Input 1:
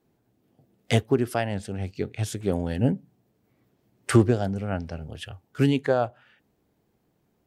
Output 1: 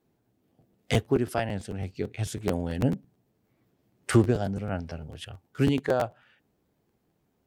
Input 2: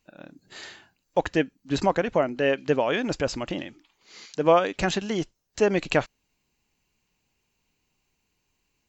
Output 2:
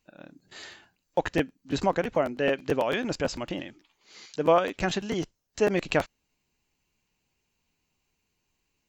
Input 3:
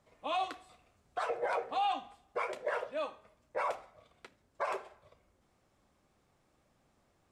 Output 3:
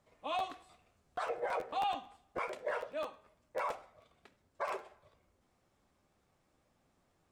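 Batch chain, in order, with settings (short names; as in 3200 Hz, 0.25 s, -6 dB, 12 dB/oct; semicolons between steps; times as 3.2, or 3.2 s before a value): crackling interface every 0.11 s, samples 512, repeat, from 0.38; gain -2.5 dB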